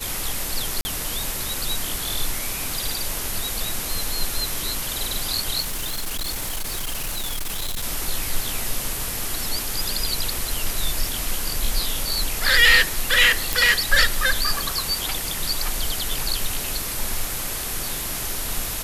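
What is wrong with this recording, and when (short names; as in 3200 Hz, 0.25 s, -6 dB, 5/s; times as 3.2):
0.81–0.85 gap 40 ms
5.6–7.84 clipped -23 dBFS
13.53 pop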